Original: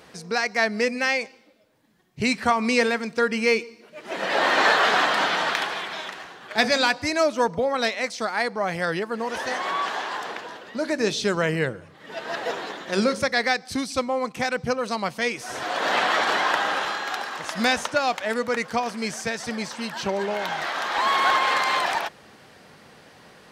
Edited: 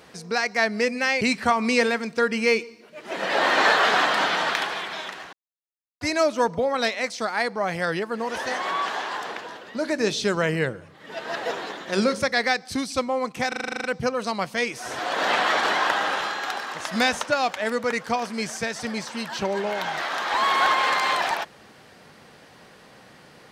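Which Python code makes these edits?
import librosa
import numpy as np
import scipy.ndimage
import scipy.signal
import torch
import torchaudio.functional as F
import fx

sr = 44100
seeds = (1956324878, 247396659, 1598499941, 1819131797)

y = fx.edit(x, sr, fx.cut(start_s=1.21, length_s=1.0),
    fx.silence(start_s=6.33, length_s=0.68),
    fx.stutter(start_s=14.48, slice_s=0.04, count=10), tone=tone)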